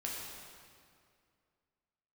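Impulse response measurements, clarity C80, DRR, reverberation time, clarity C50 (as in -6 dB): 1.0 dB, -4.5 dB, 2.2 s, -0.5 dB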